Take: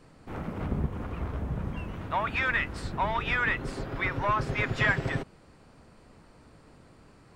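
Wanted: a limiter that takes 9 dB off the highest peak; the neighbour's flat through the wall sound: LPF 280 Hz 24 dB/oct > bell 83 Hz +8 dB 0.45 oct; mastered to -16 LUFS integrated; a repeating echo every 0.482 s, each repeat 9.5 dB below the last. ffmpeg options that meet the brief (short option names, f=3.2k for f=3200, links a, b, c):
-af "alimiter=limit=-22dB:level=0:latency=1,lowpass=f=280:w=0.5412,lowpass=f=280:w=1.3066,equalizer=f=83:t=o:w=0.45:g=8,aecho=1:1:482|964|1446|1928:0.335|0.111|0.0365|0.012,volume=19.5dB"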